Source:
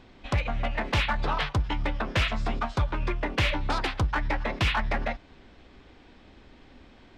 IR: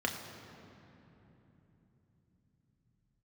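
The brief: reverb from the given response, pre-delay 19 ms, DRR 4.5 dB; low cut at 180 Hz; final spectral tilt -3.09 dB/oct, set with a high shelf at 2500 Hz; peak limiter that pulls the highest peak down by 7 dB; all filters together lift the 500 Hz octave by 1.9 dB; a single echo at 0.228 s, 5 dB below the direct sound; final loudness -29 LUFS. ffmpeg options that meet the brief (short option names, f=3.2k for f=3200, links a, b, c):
-filter_complex "[0:a]highpass=180,equalizer=f=500:t=o:g=3,highshelf=f=2.5k:g=-7,alimiter=limit=-21.5dB:level=0:latency=1,aecho=1:1:228:0.562,asplit=2[a][b];[1:a]atrim=start_sample=2205,adelay=19[c];[b][c]afir=irnorm=-1:irlink=0,volume=-11dB[d];[a][d]amix=inputs=2:normalize=0,volume=2dB"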